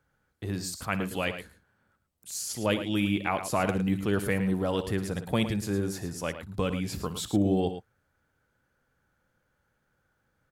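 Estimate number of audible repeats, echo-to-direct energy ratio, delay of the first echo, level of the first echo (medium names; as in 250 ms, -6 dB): 2, -9.5 dB, 59 ms, -15.5 dB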